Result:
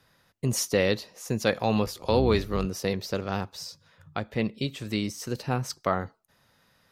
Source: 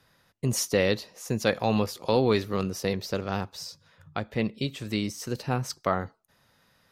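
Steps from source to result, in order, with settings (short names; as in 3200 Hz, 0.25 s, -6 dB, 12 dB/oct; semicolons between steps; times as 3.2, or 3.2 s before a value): 1.85–2.66 octaver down 2 oct, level -3 dB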